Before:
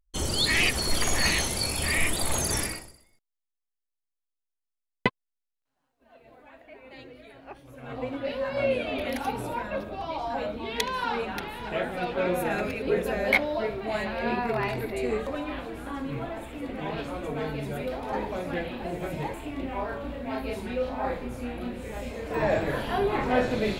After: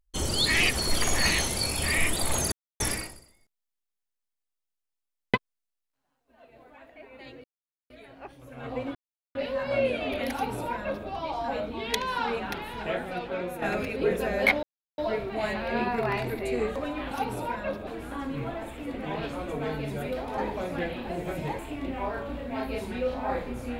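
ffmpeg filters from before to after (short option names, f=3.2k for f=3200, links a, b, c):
-filter_complex "[0:a]asplit=8[a][b][c][d][e][f][g][h];[a]atrim=end=2.52,asetpts=PTS-STARTPTS,afade=t=out:st=2.516:d=0.004:c=hsin,apad=pad_dur=0.28[i];[b]atrim=start=2.52:end=7.16,asetpts=PTS-STARTPTS,afade=t=in:d=0.004:c=hsin,afade=t=out:st=4.636:d=0.004:c=hsin,apad=pad_dur=0.46[j];[c]atrim=start=7.16:end=8.21,asetpts=PTS-STARTPTS,afade=t=in:d=0.004:c=hsin,afade=t=out:st=1.046:d=0.004:c=hsin,apad=pad_dur=0.4[k];[d]atrim=start=8.21:end=12.48,asetpts=PTS-STARTPTS,afade=t=in:d=0.004:c=hsin,afade=t=out:st=3.44:d=0.83:silence=0.316228[l];[e]atrim=start=12.48:end=13.49,asetpts=PTS-STARTPTS,afade=t=in:d=0.004:c=hsin:silence=0.316228,afade=t=out:st=1.006:d=0.004:c=hsin,apad=pad_dur=0.35[m];[f]atrim=start=13.49:end=15.622,asetpts=PTS-STARTPTS,afade=t=in:d=0.004:c=hsin[n];[g]atrim=start=9.178:end=9.942[o];[h]atrim=start=15.618[p];[i][j][k][l][m][n]concat=n=6:v=0:a=1[q];[q][o]acrossfade=d=0.004:c1=hsin:c2=hsin[r];[r][p]acrossfade=d=0.004:c1=hsin:c2=hsin"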